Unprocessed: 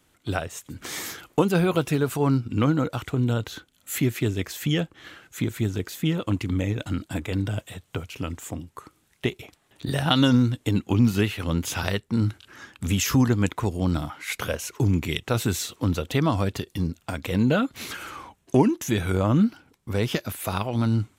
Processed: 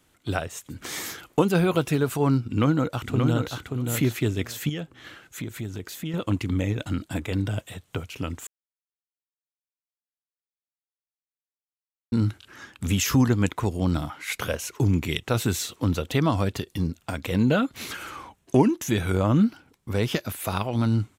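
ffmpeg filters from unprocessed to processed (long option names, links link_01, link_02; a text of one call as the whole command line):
ffmpeg -i in.wav -filter_complex "[0:a]asplit=2[link_01][link_02];[link_02]afade=type=in:start_time=2.45:duration=0.01,afade=type=out:start_time=3.54:duration=0.01,aecho=0:1:580|1160|1740:0.562341|0.0843512|0.0126527[link_03];[link_01][link_03]amix=inputs=2:normalize=0,asettb=1/sr,asplit=3[link_04][link_05][link_06];[link_04]atrim=end=4.694[link_07];[link_05]atrim=start=4.69:end=6.14,asetpts=PTS-STARTPTS,afade=type=in:duration=0.004:curve=qsin,afade=type=out:start_time=1.446:duration=0.004:curve=qsin,acompressor=threshold=-34dB:ratio=2:attack=3.2:release=140:knee=1:detection=peak[link_08];[link_06]atrim=start=6.136[link_09];[link_07][link_08]acrossfade=duration=0.004:curve1=hsin:curve2=qsin[link_10];[link_10][link_09]acrossfade=duration=0.004:curve1=qsin:curve2=hsin,asplit=3[link_11][link_12][link_13];[link_11]atrim=end=8.47,asetpts=PTS-STARTPTS,afade=type=out:start_time=8.466:duration=0.004:curve=hsin[link_14];[link_12]atrim=start=8.47:end=12.12,asetpts=PTS-STARTPTS,volume=0[link_15];[link_13]atrim=start=12.12,asetpts=PTS-STARTPTS,afade=type=in:duration=0.004:curve=hsin[link_16];[link_14][link_15][link_16]concat=n=3:v=0:a=1" out.wav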